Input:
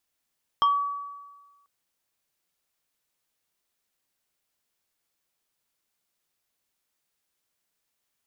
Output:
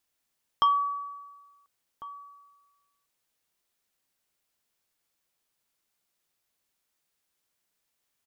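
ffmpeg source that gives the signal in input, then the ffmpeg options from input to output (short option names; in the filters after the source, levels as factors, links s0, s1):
-f lavfi -i "aevalsrc='0.158*pow(10,-3*t/1.35)*sin(2*PI*1140*t+0.66*pow(10,-3*t/0.27)*sin(2*PI*1.81*1140*t))':d=1.04:s=44100"
-filter_complex "[0:a]asplit=2[s0][s1];[s1]adelay=1399,volume=0.158,highshelf=f=4000:g=-31.5[s2];[s0][s2]amix=inputs=2:normalize=0"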